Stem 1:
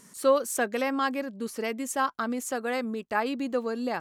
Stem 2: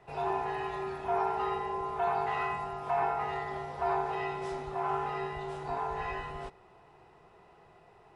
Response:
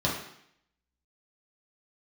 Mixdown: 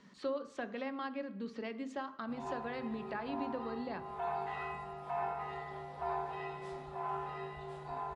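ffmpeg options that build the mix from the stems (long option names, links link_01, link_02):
-filter_complex "[0:a]lowpass=frequency=4400:width=0.5412,lowpass=frequency=4400:width=1.3066,acrossover=split=180[link_01][link_02];[link_02]acompressor=threshold=-38dB:ratio=2.5[link_03];[link_01][link_03]amix=inputs=2:normalize=0,volume=-5.5dB,asplit=3[link_04][link_05][link_06];[link_05]volume=-18dB[link_07];[1:a]adelay=2200,volume=-10dB,asplit=2[link_08][link_09];[link_09]volume=-16dB[link_10];[link_06]apad=whole_len=460973[link_11];[link_08][link_11]sidechaincompress=threshold=-52dB:ratio=8:attack=16:release=148[link_12];[2:a]atrim=start_sample=2205[link_13];[link_07][link_10]amix=inputs=2:normalize=0[link_14];[link_14][link_13]afir=irnorm=-1:irlink=0[link_15];[link_04][link_12][link_15]amix=inputs=3:normalize=0"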